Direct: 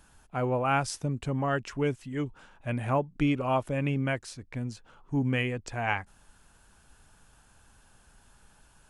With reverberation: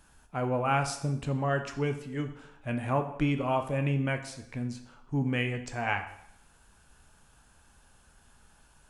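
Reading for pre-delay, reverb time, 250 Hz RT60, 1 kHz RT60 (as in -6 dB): 9 ms, 0.75 s, 0.70 s, 0.70 s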